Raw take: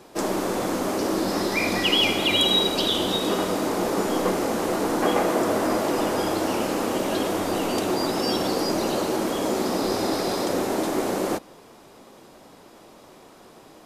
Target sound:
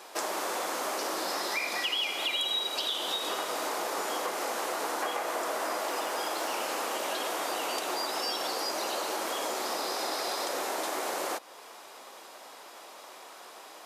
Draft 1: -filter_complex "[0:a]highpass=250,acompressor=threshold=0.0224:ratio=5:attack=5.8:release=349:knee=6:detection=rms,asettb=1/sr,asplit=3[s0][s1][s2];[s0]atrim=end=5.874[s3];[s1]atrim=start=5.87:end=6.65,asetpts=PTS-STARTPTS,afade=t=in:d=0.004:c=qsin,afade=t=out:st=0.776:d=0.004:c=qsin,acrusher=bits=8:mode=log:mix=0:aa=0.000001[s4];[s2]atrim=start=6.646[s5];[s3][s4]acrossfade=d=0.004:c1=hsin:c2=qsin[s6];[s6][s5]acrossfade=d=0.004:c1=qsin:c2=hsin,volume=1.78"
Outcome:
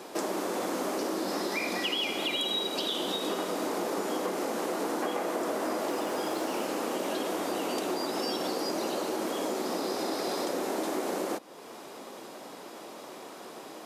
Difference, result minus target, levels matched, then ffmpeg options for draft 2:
250 Hz band +10.0 dB
-filter_complex "[0:a]highpass=750,acompressor=threshold=0.0224:ratio=5:attack=5.8:release=349:knee=6:detection=rms,asettb=1/sr,asplit=3[s0][s1][s2];[s0]atrim=end=5.874[s3];[s1]atrim=start=5.87:end=6.65,asetpts=PTS-STARTPTS,afade=t=in:d=0.004:c=qsin,afade=t=out:st=0.776:d=0.004:c=qsin,acrusher=bits=8:mode=log:mix=0:aa=0.000001[s4];[s2]atrim=start=6.646[s5];[s3][s4]acrossfade=d=0.004:c1=hsin:c2=qsin[s6];[s6][s5]acrossfade=d=0.004:c1=qsin:c2=hsin,volume=1.78"

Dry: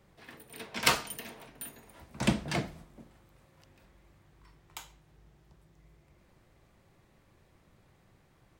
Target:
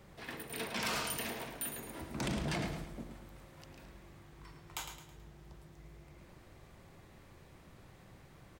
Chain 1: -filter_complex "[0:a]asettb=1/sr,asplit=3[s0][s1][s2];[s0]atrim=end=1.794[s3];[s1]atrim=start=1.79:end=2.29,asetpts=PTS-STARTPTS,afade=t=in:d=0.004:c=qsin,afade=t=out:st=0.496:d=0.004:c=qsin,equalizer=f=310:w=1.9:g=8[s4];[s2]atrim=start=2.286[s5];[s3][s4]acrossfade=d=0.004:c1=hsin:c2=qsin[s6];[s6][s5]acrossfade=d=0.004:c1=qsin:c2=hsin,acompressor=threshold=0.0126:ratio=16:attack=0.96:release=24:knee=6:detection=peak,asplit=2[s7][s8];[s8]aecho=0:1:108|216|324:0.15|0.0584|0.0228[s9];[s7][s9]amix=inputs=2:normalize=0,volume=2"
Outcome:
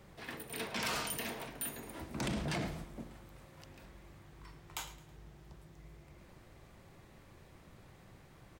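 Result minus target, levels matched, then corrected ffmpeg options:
echo-to-direct -8.5 dB
-filter_complex "[0:a]asettb=1/sr,asplit=3[s0][s1][s2];[s0]atrim=end=1.794[s3];[s1]atrim=start=1.79:end=2.29,asetpts=PTS-STARTPTS,afade=t=in:d=0.004:c=qsin,afade=t=out:st=0.496:d=0.004:c=qsin,equalizer=f=310:w=1.9:g=8[s4];[s2]atrim=start=2.286[s5];[s3][s4]acrossfade=d=0.004:c1=hsin:c2=qsin[s6];[s6][s5]acrossfade=d=0.004:c1=qsin:c2=hsin,acompressor=threshold=0.0126:ratio=16:attack=0.96:release=24:knee=6:detection=peak,asplit=2[s7][s8];[s8]aecho=0:1:108|216|324|432:0.398|0.155|0.0606|0.0236[s9];[s7][s9]amix=inputs=2:normalize=0,volume=2"

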